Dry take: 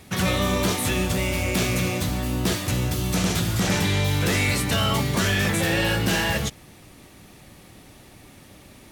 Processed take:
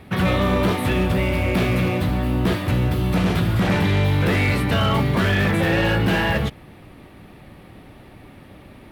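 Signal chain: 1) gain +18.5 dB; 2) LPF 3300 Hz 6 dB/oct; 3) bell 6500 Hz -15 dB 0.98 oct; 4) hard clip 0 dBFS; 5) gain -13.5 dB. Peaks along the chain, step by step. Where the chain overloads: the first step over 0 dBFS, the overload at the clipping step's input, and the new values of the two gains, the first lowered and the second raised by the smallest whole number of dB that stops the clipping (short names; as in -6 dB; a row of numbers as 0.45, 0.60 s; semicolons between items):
+6.5, +5.5, +5.5, 0.0, -13.5 dBFS; step 1, 5.5 dB; step 1 +12.5 dB, step 5 -7.5 dB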